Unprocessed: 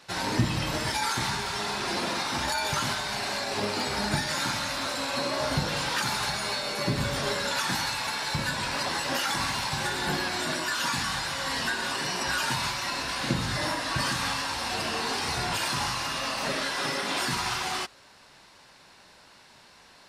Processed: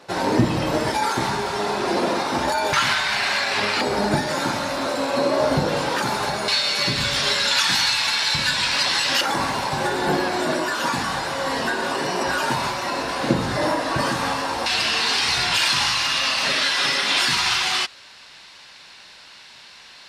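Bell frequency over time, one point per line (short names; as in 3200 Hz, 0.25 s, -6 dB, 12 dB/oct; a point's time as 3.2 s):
bell +13 dB 2.6 oct
450 Hz
from 2.73 s 2100 Hz
from 3.81 s 430 Hz
from 6.48 s 3600 Hz
from 9.21 s 470 Hz
from 14.66 s 3300 Hz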